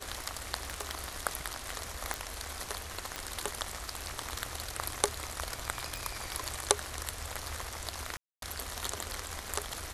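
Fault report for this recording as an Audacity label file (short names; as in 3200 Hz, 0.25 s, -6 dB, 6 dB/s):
0.700000	1.090000	clipped -25.5 dBFS
2.140000	2.140000	pop
3.160000	3.160000	pop -18 dBFS
5.960000	5.960000	pop
8.170000	8.420000	gap 0.252 s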